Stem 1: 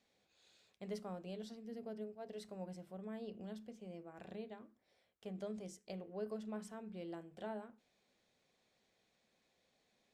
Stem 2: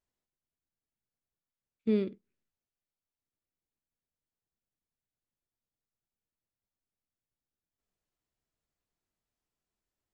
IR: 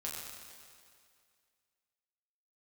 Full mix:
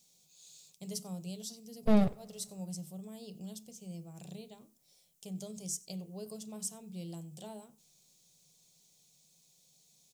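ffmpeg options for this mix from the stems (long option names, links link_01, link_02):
-filter_complex "[0:a]firequalizer=gain_entry='entry(110,0);entry(150,10);entry(210,-3);entry(310,2);entry(940,4);entry(1600,-5);entry(6200,13)':delay=0.05:min_phase=1,acontrast=55,aexciter=amount=2.6:drive=8.5:freq=2400,volume=-13dB,asplit=2[link_01][link_02];[link_02]volume=-24dB[link_03];[1:a]dynaudnorm=framelen=230:gausssize=21:maxgain=9.5dB,aeval=exprs='abs(val(0))':channel_layout=same,volume=-2.5dB,asplit=2[link_04][link_05];[link_05]volume=-23dB[link_06];[2:a]atrim=start_sample=2205[link_07];[link_06][link_07]afir=irnorm=-1:irlink=0[link_08];[link_03]aecho=0:1:93:1[link_09];[link_01][link_04][link_08][link_09]amix=inputs=4:normalize=0,equalizer=frequency=160:width_type=o:width=1:gain=14.5"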